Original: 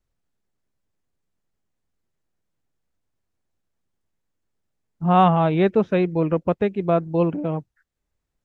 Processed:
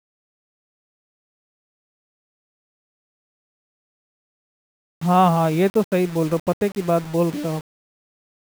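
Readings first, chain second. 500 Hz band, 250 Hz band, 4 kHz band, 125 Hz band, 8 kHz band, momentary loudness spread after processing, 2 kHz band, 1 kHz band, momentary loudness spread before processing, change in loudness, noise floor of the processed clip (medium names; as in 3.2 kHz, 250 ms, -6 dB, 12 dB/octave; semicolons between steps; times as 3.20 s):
0.0 dB, 0.0 dB, +2.5 dB, 0.0 dB, no reading, 11 LU, +0.5 dB, 0.0 dB, 11 LU, 0.0 dB, under -85 dBFS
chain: word length cut 6-bit, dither none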